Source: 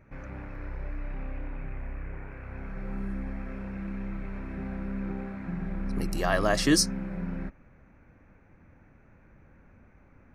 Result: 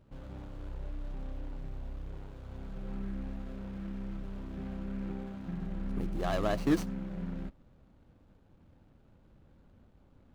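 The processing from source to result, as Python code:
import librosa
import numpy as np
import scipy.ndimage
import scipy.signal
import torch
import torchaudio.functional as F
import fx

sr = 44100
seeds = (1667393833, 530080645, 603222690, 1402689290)

y = scipy.signal.medfilt(x, 25)
y = F.gain(torch.from_numpy(y), -4.0).numpy()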